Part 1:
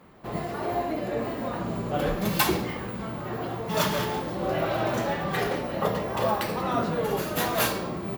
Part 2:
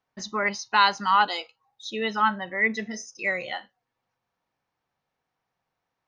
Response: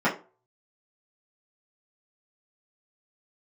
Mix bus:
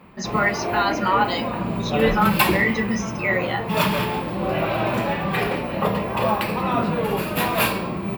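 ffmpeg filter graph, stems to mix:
-filter_complex "[0:a]equalizer=f=200:t=o:w=0.33:g=5,equalizer=f=1k:t=o:w=0.33:g=5,equalizer=f=2.5k:t=o:w=0.33:g=10,equalizer=f=6.3k:t=o:w=0.33:g=-12,volume=2.5dB[a];[1:a]alimiter=limit=-19dB:level=0:latency=1:release=132,volume=2.5dB,asplit=2[b][c];[c]volume=-14.5dB[d];[2:a]atrim=start_sample=2205[e];[d][e]afir=irnorm=-1:irlink=0[f];[a][b][f]amix=inputs=3:normalize=0,lowshelf=f=160:g=3.5"

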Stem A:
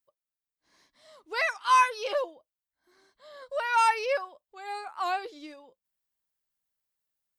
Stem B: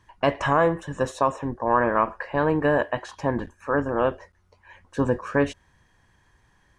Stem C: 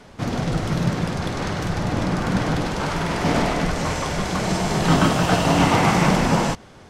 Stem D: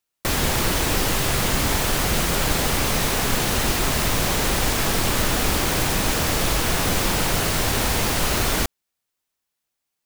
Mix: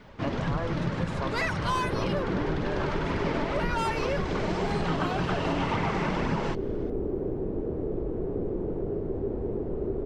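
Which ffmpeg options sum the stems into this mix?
-filter_complex "[0:a]asoftclip=type=tanh:threshold=-22dB,volume=2dB[a];[1:a]volume=-12.5dB[b];[2:a]lowpass=3.6k,bandreject=f=730:w=12,flanger=delay=0.4:depth=3.1:regen=55:speed=1.9:shape=triangular,volume=0dB[c];[3:a]lowpass=f=400:t=q:w=4.9,adelay=1500,volume=-10dB[d];[a][b][c][d]amix=inputs=4:normalize=0,acompressor=threshold=-24dB:ratio=6"

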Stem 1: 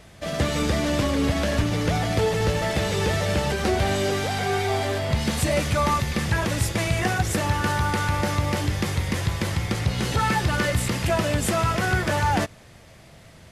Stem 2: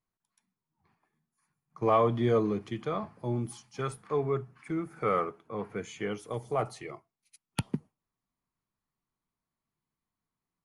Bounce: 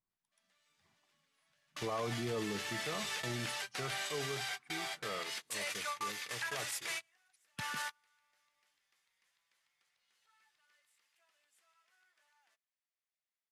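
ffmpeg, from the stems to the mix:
-filter_complex "[0:a]highpass=1.4k,adelay=100,volume=-7.5dB[a];[1:a]equalizer=f=6.8k:w=6.3:g=-5.5,volume=-6.5dB,afade=t=out:st=3.9:d=0.78:silence=0.375837,asplit=2[b][c];[c]apad=whole_len=600224[d];[a][d]sidechaingate=range=-37dB:threshold=-59dB:ratio=16:detection=peak[e];[e][b]amix=inputs=2:normalize=0,alimiter=level_in=5dB:limit=-24dB:level=0:latency=1:release=37,volume=-5dB"

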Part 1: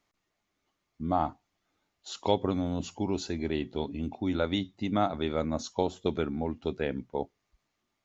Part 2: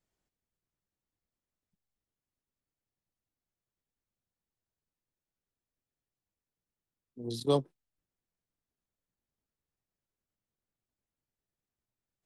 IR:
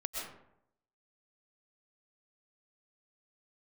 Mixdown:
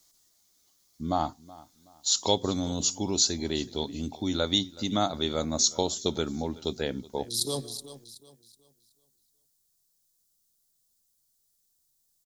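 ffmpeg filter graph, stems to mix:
-filter_complex "[0:a]volume=0dB,asplit=3[a][b][c];[b]volume=-21dB[d];[1:a]alimiter=level_in=2.5dB:limit=-24dB:level=0:latency=1,volume=-2.5dB,volume=1dB,asplit=3[e][f][g];[f]volume=-15dB[h];[g]volume=-13dB[i];[c]apad=whole_len=540240[j];[e][j]sidechaincompress=threshold=-48dB:ratio=8:attack=16:release=157[k];[2:a]atrim=start_sample=2205[l];[h][l]afir=irnorm=-1:irlink=0[m];[d][i]amix=inputs=2:normalize=0,aecho=0:1:374|748|1122|1496|1870:1|0.32|0.102|0.0328|0.0105[n];[a][k][m][n]amix=inputs=4:normalize=0,aexciter=amount=8:drive=5.9:freq=3.7k"

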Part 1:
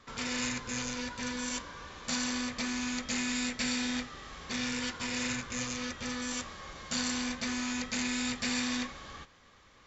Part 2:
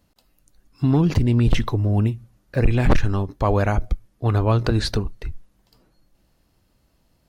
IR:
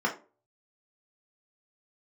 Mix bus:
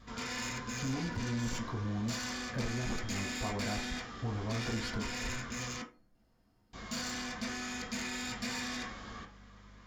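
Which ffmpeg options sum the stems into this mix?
-filter_complex "[0:a]aeval=exprs='val(0)+0.00178*(sin(2*PI*50*n/s)+sin(2*PI*2*50*n/s)/2+sin(2*PI*3*50*n/s)/3+sin(2*PI*4*50*n/s)/4+sin(2*PI*5*50*n/s)/5)':c=same,asoftclip=type=tanh:threshold=-28.5dB,volume=-1.5dB,asplit=3[a][b][c];[a]atrim=end=5.82,asetpts=PTS-STARTPTS,afade=t=out:st=5.816:d=0.004:c=hsin[d];[b]atrim=start=5.82:end=6.73,asetpts=PTS-STARTPTS,volume=0[e];[c]atrim=start=6.73,asetpts=PTS-STARTPTS,afade=t=in:d=0.004:c=hsin[f];[d][e][f]concat=n=3:v=0:a=1,asplit=2[g][h];[h]volume=-8.5dB[i];[1:a]acompressor=threshold=-27dB:ratio=6,volume=-10.5dB,asplit=2[j][k];[k]volume=-5.5dB[l];[2:a]atrim=start_sample=2205[m];[i][l]amix=inputs=2:normalize=0[n];[n][m]afir=irnorm=-1:irlink=0[o];[g][j][o]amix=inputs=3:normalize=0,asoftclip=type=tanh:threshold=-28dB"

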